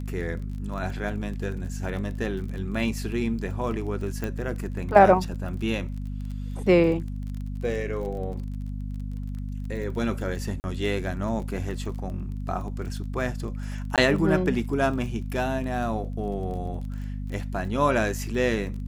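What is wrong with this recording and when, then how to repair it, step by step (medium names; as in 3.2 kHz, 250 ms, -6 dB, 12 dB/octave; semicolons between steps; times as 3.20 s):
crackle 25 per s -34 dBFS
hum 50 Hz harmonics 5 -32 dBFS
4.24 s: pop -17 dBFS
10.60–10.64 s: dropout 39 ms
13.96–13.98 s: dropout 17 ms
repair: de-click; de-hum 50 Hz, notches 5; interpolate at 10.60 s, 39 ms; interpolate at 13.96 s, 17 ms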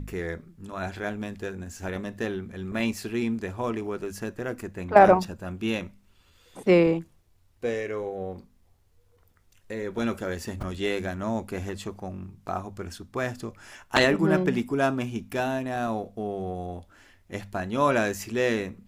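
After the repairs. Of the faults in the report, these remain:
nothing left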